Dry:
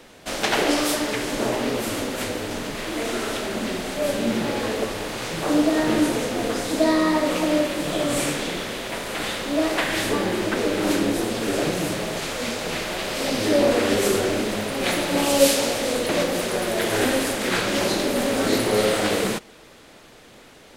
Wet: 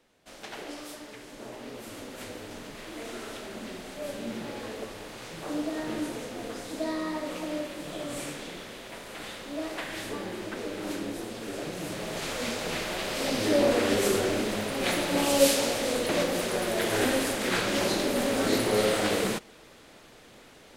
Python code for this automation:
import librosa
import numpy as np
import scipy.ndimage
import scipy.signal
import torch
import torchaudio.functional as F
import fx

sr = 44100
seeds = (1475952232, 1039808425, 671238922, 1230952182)

y = fx.gain(x, sr, db=fx.line((1.34, -19.5), (2.32, -12.5), (11.68, -12.5), (12.29, -4.5)))